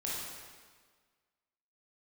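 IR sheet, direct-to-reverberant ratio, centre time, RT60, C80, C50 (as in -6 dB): -6.5 dB, 0.107 s, 1.6 s, 1.0 dB, -2.0 dB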